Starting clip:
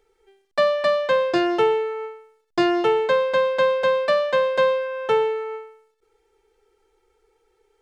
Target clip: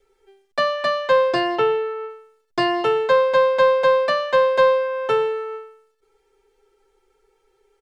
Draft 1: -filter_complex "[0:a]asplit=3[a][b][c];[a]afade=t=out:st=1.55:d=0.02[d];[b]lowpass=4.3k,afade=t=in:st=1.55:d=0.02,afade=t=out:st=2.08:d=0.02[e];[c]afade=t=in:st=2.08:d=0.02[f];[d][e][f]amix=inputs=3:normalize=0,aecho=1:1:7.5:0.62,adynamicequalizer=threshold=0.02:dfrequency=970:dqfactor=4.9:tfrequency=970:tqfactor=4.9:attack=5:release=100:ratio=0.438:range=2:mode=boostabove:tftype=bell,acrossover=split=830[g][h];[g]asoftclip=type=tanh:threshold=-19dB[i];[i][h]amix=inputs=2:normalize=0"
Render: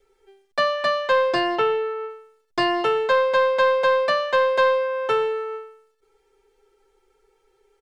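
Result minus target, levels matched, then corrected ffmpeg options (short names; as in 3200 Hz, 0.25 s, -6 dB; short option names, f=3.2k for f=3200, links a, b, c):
soft clip: distortion +15 dB
-filter_complex "[0:a]asplit=3[a][b][c];[a]afade=t=out:st=1.55:d=0.02[d];[b]lowpass=4.3k,afade=t=in:st=1.55:d=0.02,afade=t=out:st=2.08:d=0.02[e];[c]afade=t=in:st=2.08:d=0.02[f];[d][e][f]amix=inputs=3:normalize=0,aecho=1:1:7.5:0.62,adynamicequalizer=threshold=0.02:dfrequency=970:dqfactor=4.9:tfrequency=970:tqfactor=4.9:attack=5:release=100:ratio=0.438:range=2:mode=boostabove:tftype=bell,acrossover=split=830[g][h];[g]asoftclip=type=tanh:threshold=-8dB[i];[i][h]amix=inputs=2:normalize=0"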